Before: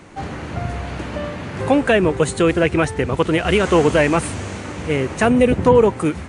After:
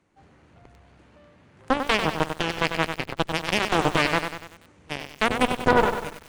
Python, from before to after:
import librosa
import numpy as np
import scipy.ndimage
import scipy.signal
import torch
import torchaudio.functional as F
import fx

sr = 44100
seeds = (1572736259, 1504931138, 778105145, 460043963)

y = fx.cheby_harmonics(x, sr, harmonics=(2, 3, 6, 8), levels_db=(-22, -9, -16, -20), full_scale_db=-1.0)
y = fx.echo_crushed(y, sr, ms=96, feedback_pct=55, bits=6, wet_db=-7)
y = y * 10.0 ** (-1.5 / 20.0)